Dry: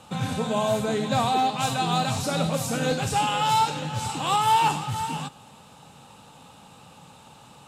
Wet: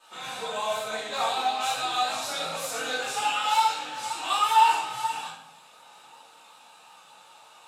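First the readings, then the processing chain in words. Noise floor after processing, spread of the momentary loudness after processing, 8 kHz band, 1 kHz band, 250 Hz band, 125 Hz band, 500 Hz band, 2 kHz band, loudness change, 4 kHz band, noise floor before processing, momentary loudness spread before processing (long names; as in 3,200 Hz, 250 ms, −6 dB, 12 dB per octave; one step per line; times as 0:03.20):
−53 dBFS, 11 LU, −2.0 dB, −1.0 dB, −18.5 dB, below −25 dB, −6.5 dB, +1.0 dB, −2.0 dB, 0.0 dB, −50 dBFS, 8 LU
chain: multi-voice chorus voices 2, 0.42 Hz, delay 19 ms, depth 3.5 ms
high-pass filter 730 Hz 12 dB per octave
pitch vibrato 5.4 Hz 34 cents
rectangular room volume 110 cubic metres, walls mixed, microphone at 2.7 metres
level −7 dB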